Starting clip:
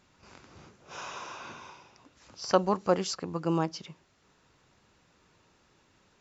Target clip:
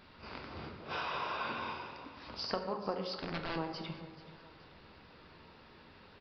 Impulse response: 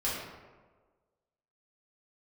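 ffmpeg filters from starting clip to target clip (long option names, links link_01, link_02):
-filter_complex "[0:a]equalizer=frequency=150:width=1.5:gain=-2.5,acompressor=threshold=-42dB:ratio=6,asettb=1/sr,asplit=3[link_01][link_02][link_03];[link_01]atrim=end=3.134[link_04];[link_02]atrim=start=3.13:end=3.56,asetpts=PTS-STARTPTS,afade=type=in:duration=0.004:curve=qsin,afade=type=out:start_time=0.426:duration=0.004:curve=qsin,aeval=exprs='(mod(94.4*val(0)+1,2)-1)/94.4':channel_layout=same[link_05];[link_03]atrim=start=3.556[link_06];[link_04][link_05]acrossfade=duration=0.004:curve1=hsin:curve2=qsin[link_07];[link_07][link_06]acrossfade=duration=0.004:curve1=qsin:curve2=hsin,aecho=1:1:430|860|1290|1720:0.133|0.06|0.027|0.0122,asplit=2[link_08][link_09];[1:a]atrim=start_sample=2205,asetrate=38367,aresample=44100[link_10];[link_09][link_10]afir=irnorm=-1:irlink=0,volume=-9.5dB[link_11];[link_08][link_11]amix=inputs=2:normalize=0,aresample=11025,aresample=44100,volume=4.5dB"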